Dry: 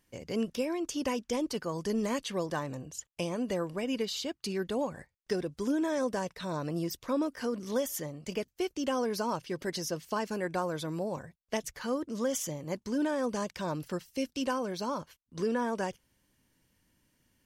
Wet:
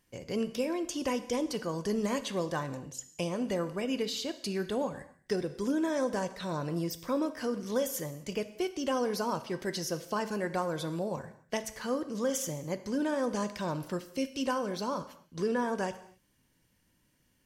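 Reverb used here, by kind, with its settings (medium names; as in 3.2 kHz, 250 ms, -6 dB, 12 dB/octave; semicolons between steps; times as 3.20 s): gated-style reverb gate 290 ms falling, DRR 10 dB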